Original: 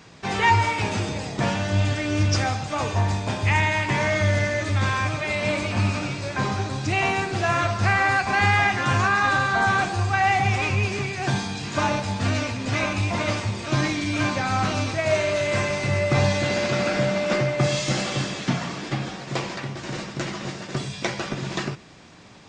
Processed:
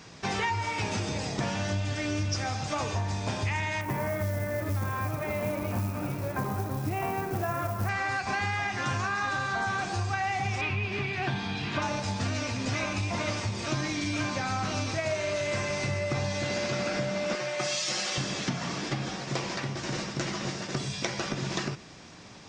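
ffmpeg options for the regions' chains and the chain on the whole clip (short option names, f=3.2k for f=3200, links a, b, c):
-filter_complex "[0:a]asettb=1/sr,asplit=3[a][b][c];[a]atrim=end=3.814[d];[b]atrim=start=3.81:end=7.89,asetpts=PTS-STARTPTS,afade=t=in:d=0.004:c=qsin,afade=t=out:st=4.076:d=0.004:c=qsin,lowpass=1.2k,acrusher=bits=7:mode=log:mix=0:aa=0.000001,aemphasis=mode=production:type=50kf[e];[c]atrim=start=7.886[f];[d][e]acrossfade=d=0.004:c1=hsin:c2=qsin[g];[g][f]acrossfade=d=0.004:c1=qsin:c2=hsin,asettb=1/sr,asplit=3[h][i][j];[h]atrim=end=10.614[k];[i]atrim=start=10.61:end=11.82,asetpts=PTS-STARTPTS,afade=t=in:d=0.004:c=qsin,afade=t=out:st=1.206:d=0.004:c=qsin,highshelf=f=4.6k:t=q:w=1.5:g=-12.5,bandreject=f=530:w=8.1[l];[j]atrim=start=11.816[m];[k][l]acrossfade=d=0.004:c1=hsin:c2=qsin[n];[n][m]acrossfade=d=0.004:c1=qsin:c2=hsin,asettb=1/sr,asplit=3[o][p][q];[o]atrim=end=17.354[r];[p]atrim=start=17.35:end=18.18,asetpts=PTS-STARTPTS,afade=t=in:d=0.004:c=qsin,afade=t=out:st=0.826:d=0.004:c=qsin,highpass=f=990:p=1,aecho=1:1:5.5:0.65,atrim=end_sample=36603[s];[q]atrim=start=18.176[t];[r][s]acrossfade=d=0.004:c1=hsin:c2=qsin[u];[u][t]acrossfade=d=0.004:c1=qsin:c2=hsin,equalizer=f=5.6k:t=o:w=0.48:g=5.5,acompressor=threshold=-26dB:ratio=6,volume=-1dB"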